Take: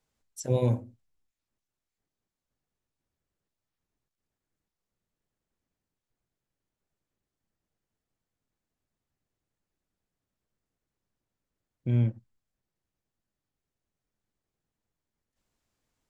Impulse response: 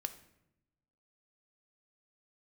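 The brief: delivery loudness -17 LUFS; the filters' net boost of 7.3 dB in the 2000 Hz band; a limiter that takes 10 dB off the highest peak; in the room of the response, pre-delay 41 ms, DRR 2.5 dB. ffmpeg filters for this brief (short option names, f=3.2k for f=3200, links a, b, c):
-filter_complex "[0:a]equalizer=f=2k:t=o:g=9,alimiter=limit=-23dB:level=0:latency=1,asplit=2[a][b];[1:a]atrim=start_sample=2205,adelay=41[c];[b][c]afir=irnorm=-1:irlink=0,volume=-1.5dB[d];[a][d]amix=inputs=2:normalize=0,volume=16dB"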